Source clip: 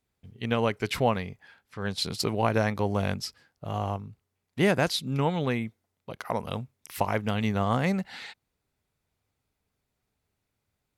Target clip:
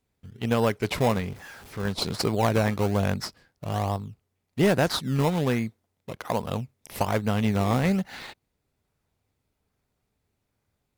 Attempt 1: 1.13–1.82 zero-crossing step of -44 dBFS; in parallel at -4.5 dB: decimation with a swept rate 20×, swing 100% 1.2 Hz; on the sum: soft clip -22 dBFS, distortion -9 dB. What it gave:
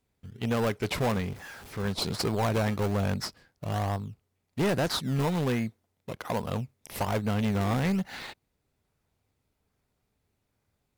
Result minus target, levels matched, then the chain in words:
soft clip: distortion +11 dB
1.13–1.82 zero-crossing step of -44 dBFS; in parallel at -4.5 dB: decimation with a swept rate 20×, swing 100% 1.2 Hz; on the sum: soft clip -11.5 dBFS, distortion -20 dB

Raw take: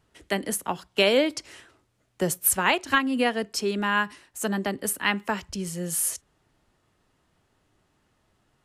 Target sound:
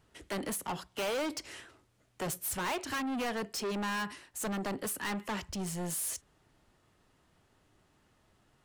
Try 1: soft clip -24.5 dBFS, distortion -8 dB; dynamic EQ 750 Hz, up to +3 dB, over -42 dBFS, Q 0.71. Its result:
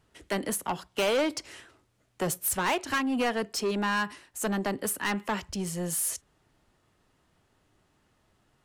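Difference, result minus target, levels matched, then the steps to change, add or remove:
soft clip: distortion -4 dB
change: soft clip -33.5 dBFS, distortion -3 dB

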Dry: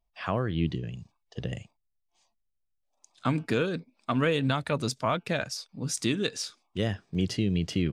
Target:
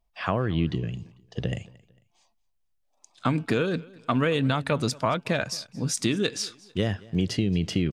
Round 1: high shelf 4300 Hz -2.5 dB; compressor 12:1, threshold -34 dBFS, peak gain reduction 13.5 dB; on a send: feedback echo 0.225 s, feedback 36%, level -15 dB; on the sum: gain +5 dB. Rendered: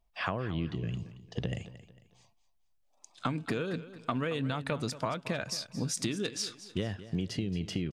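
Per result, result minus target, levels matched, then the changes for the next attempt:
compressor: peak gain reduction +9 dB; echo-to-direct +8 dB
change: compressor 12:1, threshold -24 dBFS, peak gain reduction 4.5 dB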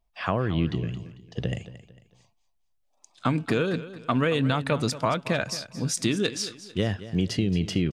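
echo-to-direct +8 dB
change: feedback echo 0.225 s, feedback 36%, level -23 dB

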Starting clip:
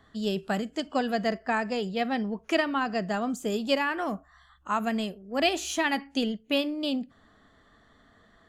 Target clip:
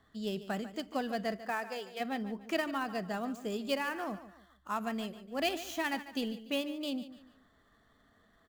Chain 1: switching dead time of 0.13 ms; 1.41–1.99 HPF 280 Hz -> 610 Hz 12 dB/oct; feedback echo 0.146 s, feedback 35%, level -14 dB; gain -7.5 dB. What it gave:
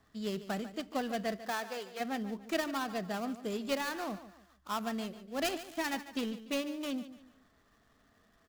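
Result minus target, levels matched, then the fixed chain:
switching dead time: distortion +10 dB
switching dead time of 0.045 ms; 1.41–1.99 HPF 280 Hz -> 610 Hz 12 dB/oct; feedback echo 0.146 s, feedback 35%, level -14 dB; gain -7.5 dB

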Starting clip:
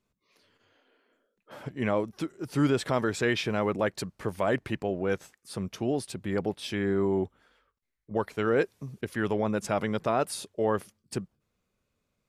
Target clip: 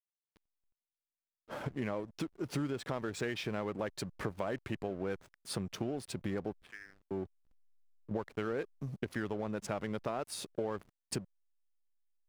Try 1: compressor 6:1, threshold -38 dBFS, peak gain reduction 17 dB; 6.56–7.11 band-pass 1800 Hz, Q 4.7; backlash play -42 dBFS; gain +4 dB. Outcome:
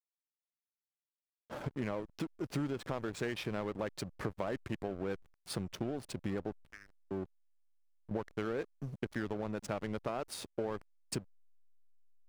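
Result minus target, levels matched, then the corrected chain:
backlash: distortion +6 dB
compressor 6:1, threshold -38 dBFS, peak gain reduction 17 dB; 6.56–7.11 band-pass 1800 Hz, Q 4.7; backlash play -49 dBFS; gain +4 dB

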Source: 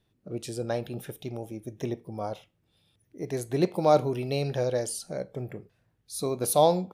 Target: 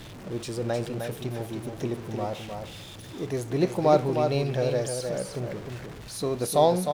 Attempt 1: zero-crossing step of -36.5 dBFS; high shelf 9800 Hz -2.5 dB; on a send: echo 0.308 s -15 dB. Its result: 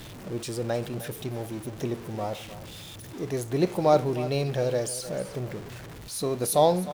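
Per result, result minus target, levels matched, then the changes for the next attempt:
echo-to-direct -9 dB; 8000 Hz band +3.0 dB
change: echo 0.308 s -6 dB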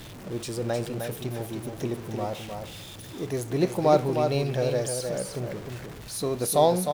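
8000 Hz band +3.5 dB
change: high shelf 9800 Hz -11 dB

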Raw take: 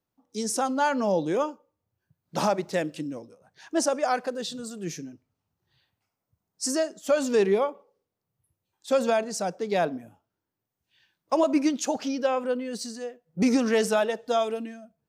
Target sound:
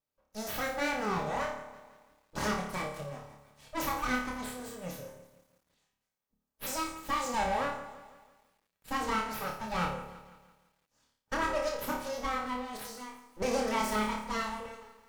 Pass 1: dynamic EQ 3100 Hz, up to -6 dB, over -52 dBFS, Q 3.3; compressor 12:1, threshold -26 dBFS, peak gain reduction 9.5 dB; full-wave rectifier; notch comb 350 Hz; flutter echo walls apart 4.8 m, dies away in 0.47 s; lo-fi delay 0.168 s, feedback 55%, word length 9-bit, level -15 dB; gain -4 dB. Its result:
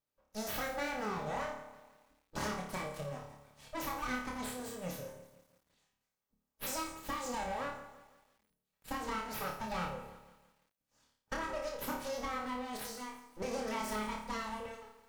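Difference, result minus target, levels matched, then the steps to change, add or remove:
compressor: peak gain reduction +9.5 dB
remove: compressor 12:1, threshold -26 dBFS, peak gain reduction 9.5 dB

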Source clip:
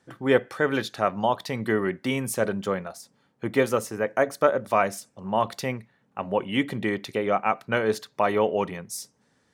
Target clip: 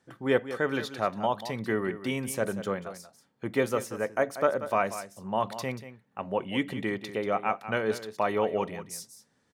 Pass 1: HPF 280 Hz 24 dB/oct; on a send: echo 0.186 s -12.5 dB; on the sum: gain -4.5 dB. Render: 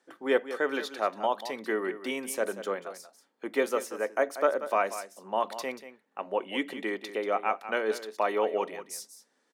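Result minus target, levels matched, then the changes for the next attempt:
250 Hz band -3.5 dB
remove: HPF 280 Hz 24 dB/oct

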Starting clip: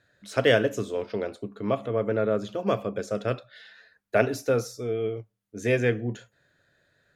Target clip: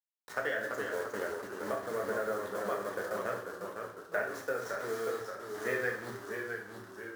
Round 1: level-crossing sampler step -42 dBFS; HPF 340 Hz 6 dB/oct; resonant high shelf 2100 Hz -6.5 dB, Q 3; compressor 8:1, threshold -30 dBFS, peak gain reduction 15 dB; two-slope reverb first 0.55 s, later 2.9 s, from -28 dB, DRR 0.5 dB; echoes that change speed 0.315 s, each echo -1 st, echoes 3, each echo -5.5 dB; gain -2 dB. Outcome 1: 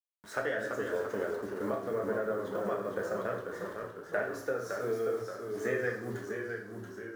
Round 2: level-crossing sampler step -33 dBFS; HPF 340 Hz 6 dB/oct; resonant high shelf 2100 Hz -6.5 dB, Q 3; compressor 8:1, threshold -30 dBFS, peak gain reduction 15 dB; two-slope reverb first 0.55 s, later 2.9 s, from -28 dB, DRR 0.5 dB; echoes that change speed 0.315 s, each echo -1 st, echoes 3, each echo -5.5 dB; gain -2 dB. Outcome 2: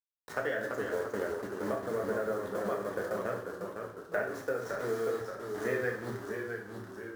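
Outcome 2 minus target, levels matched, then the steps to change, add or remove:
250 Hz band +3.5 dB
change: HPF 1000 Hz 6 dB/oct

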